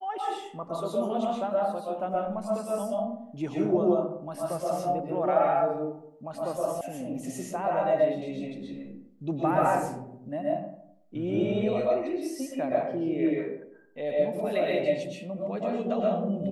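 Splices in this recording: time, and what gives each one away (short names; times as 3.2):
6.81 sound cut off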